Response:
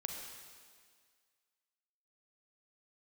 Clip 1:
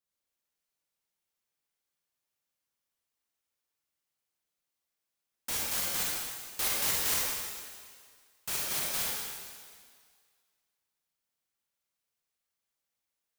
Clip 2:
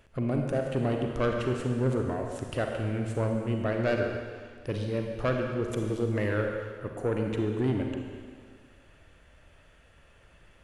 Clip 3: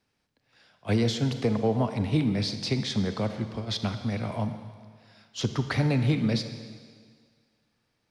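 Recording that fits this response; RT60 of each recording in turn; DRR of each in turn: 2; 1.9, 1.9, 1.9 seconds; −4.5, 2.0, 8.5 decibels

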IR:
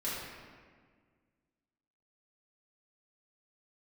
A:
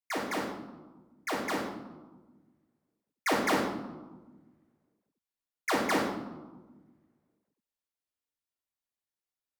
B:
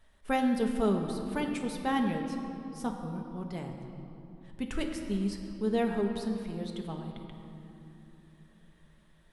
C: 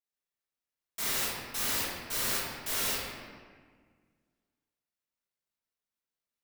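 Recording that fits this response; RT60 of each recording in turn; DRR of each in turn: C; 1.3, 3.0, 1.7 seconds; −4.5, 2.5, −10.0 decibels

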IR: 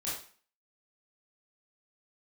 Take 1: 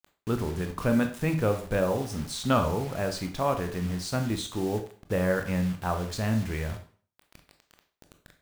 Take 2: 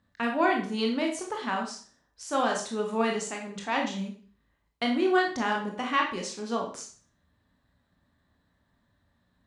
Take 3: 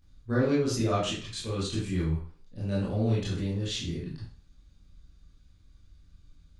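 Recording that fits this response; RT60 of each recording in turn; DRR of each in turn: 3; 0.45, 0.45, 0.45 seconds; 6.0, 0.5, −8.5 decibels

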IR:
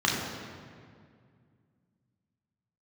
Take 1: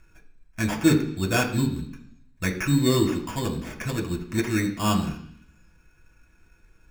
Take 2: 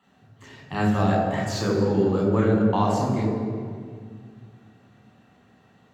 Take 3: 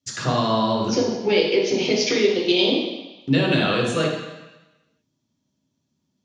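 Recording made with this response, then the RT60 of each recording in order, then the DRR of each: 2; 0.65, 2.1, 1.1 seconds; 0.0, −4.0, −4.0 decibels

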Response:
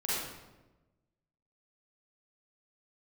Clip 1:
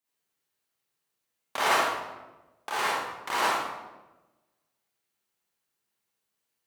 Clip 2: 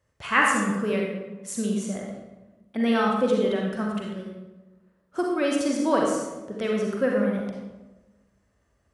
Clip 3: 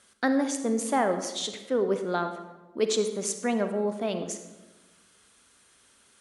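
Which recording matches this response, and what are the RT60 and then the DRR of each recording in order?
1; 1.1, 1.1, 1.1 seconds; −9.5, −1.5, 7.5 decibels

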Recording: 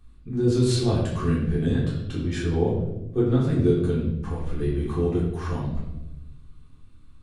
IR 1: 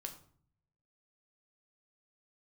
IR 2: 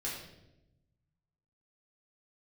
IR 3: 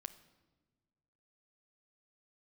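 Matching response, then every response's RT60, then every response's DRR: 2; 0.55 s, 0.90 s, non-exponential decay; 3.5, −7.0, 11.0 decibels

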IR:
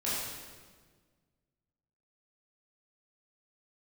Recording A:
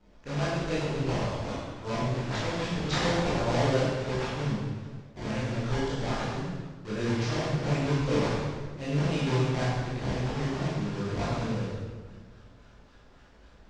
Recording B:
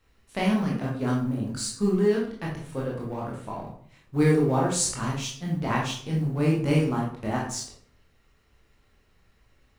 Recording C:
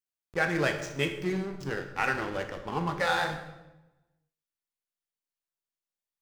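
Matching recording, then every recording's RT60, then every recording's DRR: A; 1.6, 0.55, 1.0 seconds; −9.5, −4.0, 5.0 decibels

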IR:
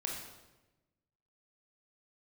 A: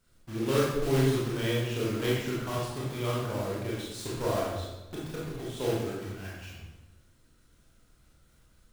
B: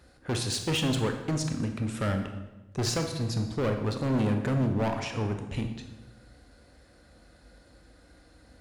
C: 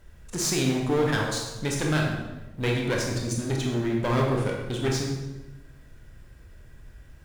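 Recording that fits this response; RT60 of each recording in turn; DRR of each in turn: C; 1.1, 1.1, 1.1 seconds; −6.5, 4.5, −1.0 decibels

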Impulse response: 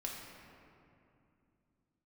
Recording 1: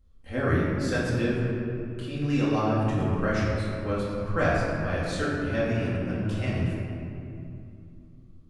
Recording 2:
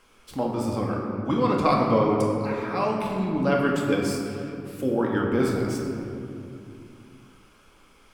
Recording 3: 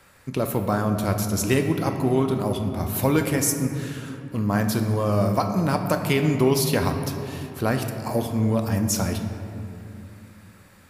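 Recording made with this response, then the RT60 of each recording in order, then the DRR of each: 2; 2.6, 2.6, 2.7 seconds; −8.0, −2.0, 4.5 decibels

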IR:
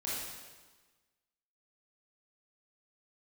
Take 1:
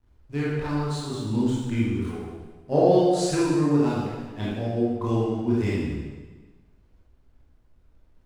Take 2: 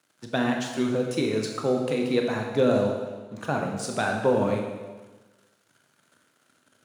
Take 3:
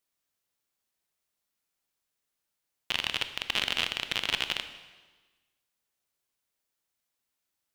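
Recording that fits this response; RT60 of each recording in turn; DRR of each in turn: 1; 1.3, 1.3, 1.3 seconds; −8.0, 1.5, 9.5 decibels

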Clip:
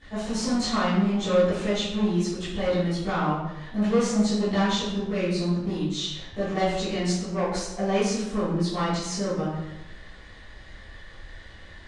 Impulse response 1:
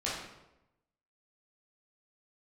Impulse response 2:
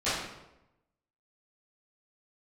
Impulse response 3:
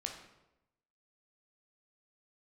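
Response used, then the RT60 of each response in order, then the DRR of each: 2; 0.90, 0.90, 0.90 seconds; −8.0, −16.0, 2.0 decibels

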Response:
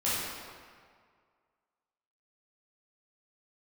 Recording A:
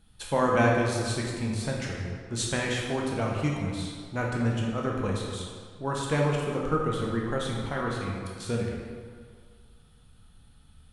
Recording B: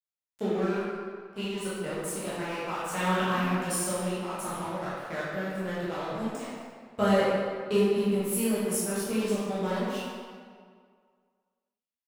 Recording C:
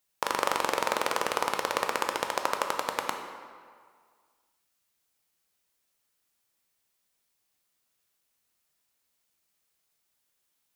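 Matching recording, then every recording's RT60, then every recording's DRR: B; 1.9, 1.9, 1.9 seconds; −2.5, −10.5, 4.0 decibels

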